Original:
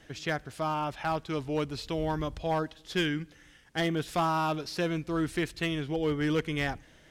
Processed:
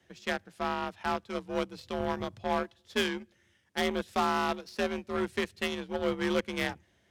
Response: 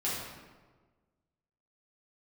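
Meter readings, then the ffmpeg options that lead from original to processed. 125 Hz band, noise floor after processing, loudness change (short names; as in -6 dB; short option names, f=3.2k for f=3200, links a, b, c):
-10.0 dB, -68 dBFS, -1.5 dB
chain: -af "afreqshift=51,aeval=exprs='0.188*(cos(1*acos(clip(val(0)/0.188,-1,1)))-cos(1*PI/2))+0.00596*(cos(5*acos(clip(val(0)/0.188,-1,1)))-cos(5*PI/2))+0.0237*(cos(7*acos(clip(val(0)/0.188,-1,1)))-cos(7*PI/2))':c=same"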